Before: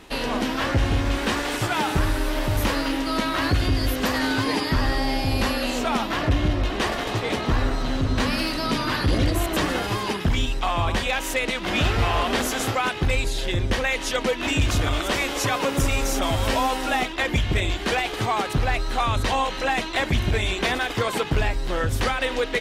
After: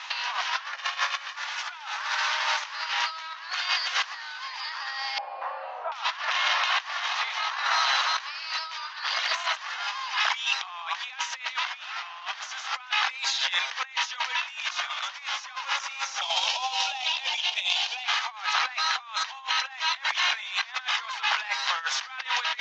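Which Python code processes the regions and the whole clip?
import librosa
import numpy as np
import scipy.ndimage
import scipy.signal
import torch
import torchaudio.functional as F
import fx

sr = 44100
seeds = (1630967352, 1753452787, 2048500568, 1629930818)

y = fx.chain(x, sr, fx.comb(ms=1.7, depth=0.38),
    fx.over_compress(threshold_db=-25.0, ratio=-0.5), at=(0.73, 1.36))
y = fx.chain(y, sr, fx.cheby1_bandpass(low_hz=170.0, high_hz=590.0, order=2),
    fx.doubler(ms=39.0, db=-6.5), at=(5.18, 5.92))
y = fx.chain(y, sr, fx.band_shelf(hz=1500.0, db=-14.0, octaves=1.2),
    fx.over_compress(threshold_db=-24.0, ratio=-0.5), at=(16.21, 18.04))
y = scipy.signal.sosfilt(scipy.signal.butter(6, 890.0, 'highpass', fs=sr, output='sos'), y)
y = fx.over_compress(y, sr, threshold_db=-35.0, ratio=-0.5)
y = scipy.signal.sosfilt(scipy.signal.butter(12, 6500.0, 'lowpass', fs=sr, output='sos'), y)
y = y * librosa.db_to_amplitude(6.0)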